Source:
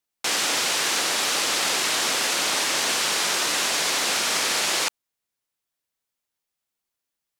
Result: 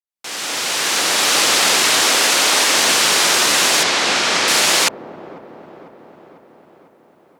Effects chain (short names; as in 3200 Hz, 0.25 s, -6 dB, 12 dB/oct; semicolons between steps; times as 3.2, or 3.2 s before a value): opening faded in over 1.39 s; 2.01–2.78 HPF 220 Hz 12 dB/oct; 3.83–4.48 air absorption 75 m; dark delay 0.498 s, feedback 61%, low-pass 520 Hz, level -8 dB; gain +9 dB